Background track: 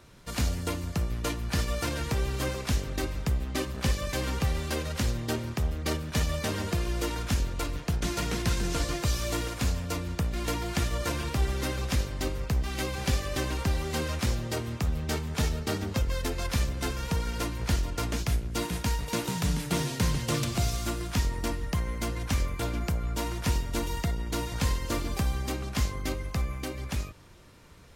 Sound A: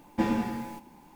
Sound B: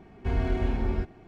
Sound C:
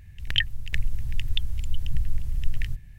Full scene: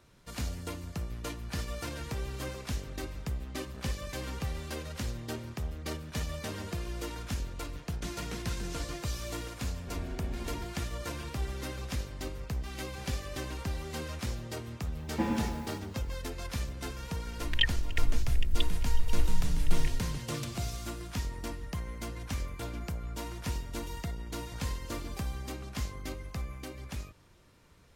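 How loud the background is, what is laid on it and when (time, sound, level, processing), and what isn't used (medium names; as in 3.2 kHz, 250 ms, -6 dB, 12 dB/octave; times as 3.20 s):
background track -7.5 dB
9.62 s: add B -13 dB
15.00 s: add A -4 dB
17.23 s: add C -7 dB + comb 3.2 ms, depth 94%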